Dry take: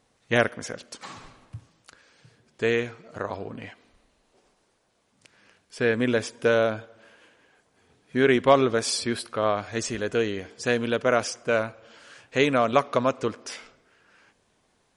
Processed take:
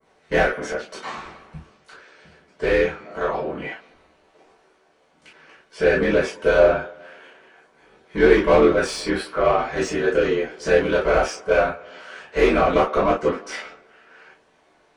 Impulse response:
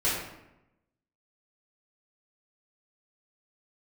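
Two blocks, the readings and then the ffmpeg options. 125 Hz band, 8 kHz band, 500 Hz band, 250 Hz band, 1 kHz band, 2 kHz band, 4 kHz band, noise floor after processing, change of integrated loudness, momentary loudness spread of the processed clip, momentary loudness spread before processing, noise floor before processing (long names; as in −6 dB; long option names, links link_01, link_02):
+1.5 dB, −3.0 dB, +6.0 dB, +3.0 dB, +4.5 dB, +4.5 dB, −0.5 dB, −60 dBFS, +4.5 dB, 17 LU, 18 LU, −69 dBFS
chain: -filter_complex "[0:a]aeval=exprs='val(0)*sin(2*PI*42*n/s)':channel_layout=same,adynamicequalizer=threshold=0.00562:dfrequency=4300:dqfactor=0.75:tfrequency=4300:tqfactor=0.75:attack=5:release=100:ratio=0.375:range=1.5:mode=cutabove:tftype=bell,asplit=2[link_01][link_02];[link_02]highpass=frequency=720:poles=1,volume=24dB,asoftclip=type=tanh:threshold=-4.5dB[link_03];[link_01][link_03]amix=inputs=2:normalize=0,lowpass=frequency=1200:poles=1,volume=-6dB[link_04];[1:a]atrim=start_sample=2205,atrim=end_sample=3087[link_05];[link_04][link_05]afir=irnorm=-1:irlink=0,volume=-9dB"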